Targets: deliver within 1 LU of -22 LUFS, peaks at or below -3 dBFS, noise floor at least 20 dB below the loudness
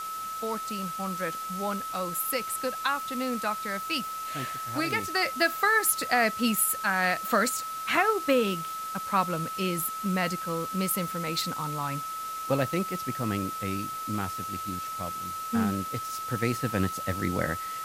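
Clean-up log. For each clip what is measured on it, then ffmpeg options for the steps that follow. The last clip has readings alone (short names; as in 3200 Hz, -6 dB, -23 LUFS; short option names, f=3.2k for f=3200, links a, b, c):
steady tone 1300 Hz; tone level -33 dBFS; noise floor -36 dBFS; noise floor target -49 dBFS; loudness -28.5 LUFS; peak -10.0 dBFS; loudness target -22.0 LUFS
-> -af "bandreject=f=1.3k:w=30"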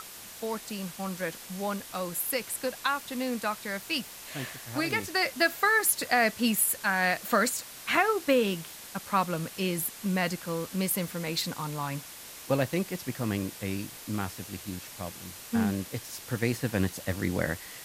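steady tone none; noise floor -45 dBFS; noise floor target -50 dBFS
-> -af "afftdn=nr=6:nf=-45"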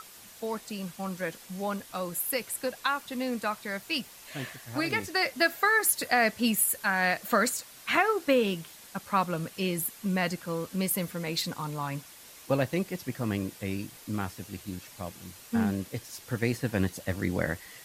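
noise floor -50 dBFS; loudness -29.5 LUFS; peak -11.0 dBFS; loudness target -22.0 LUFS
-> -af "volume=7.5dB"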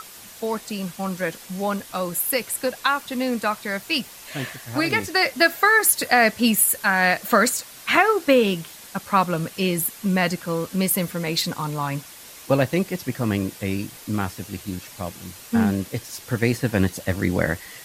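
loudness -22.0 LUFS; peak -3.5 dBFS; noise floor -43 dBFS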